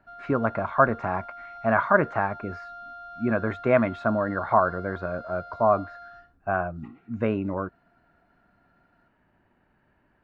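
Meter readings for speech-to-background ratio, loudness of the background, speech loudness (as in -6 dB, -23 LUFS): 16.0 dB, -42.0 LUFS, -26.0 LUFS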